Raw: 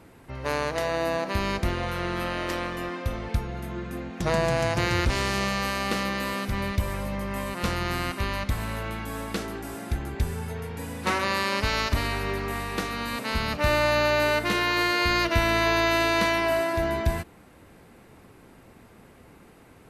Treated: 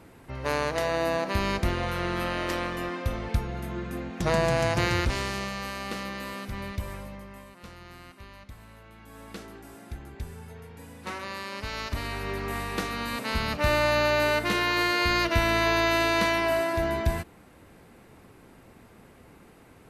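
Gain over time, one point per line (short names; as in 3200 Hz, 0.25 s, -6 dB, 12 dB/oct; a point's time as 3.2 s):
4.84 s 0 dB
5.51 s -7 dB
6.93 s -7 dB
7.59 s -18.5 dB
8.89 s -18.5 dB
9.31 s -10.5 dB
11.53 s -10.5 dB
12.56 s -1 dB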